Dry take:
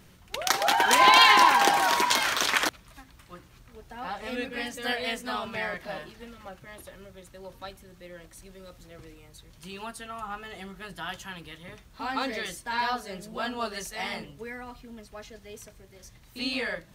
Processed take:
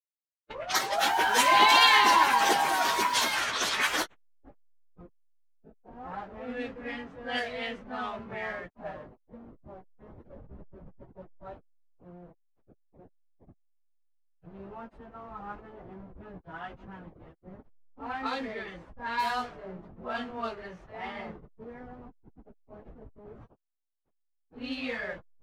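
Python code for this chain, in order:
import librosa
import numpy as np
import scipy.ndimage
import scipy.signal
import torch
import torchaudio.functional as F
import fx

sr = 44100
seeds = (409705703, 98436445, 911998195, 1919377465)

y = fx.delta_hold(x, sr, step_db=-37.0)
y = fx.stretch_vocoder_free(y, sr, factor=1.5)
y = fx.env_lowpass(y, sr, base_hz=570.0, full_db=-24.0)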